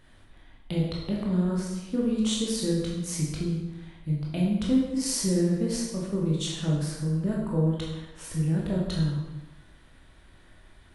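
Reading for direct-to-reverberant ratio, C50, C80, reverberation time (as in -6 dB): -4.0 dB, 1.0 dB, 3.5 dB, 1.1 s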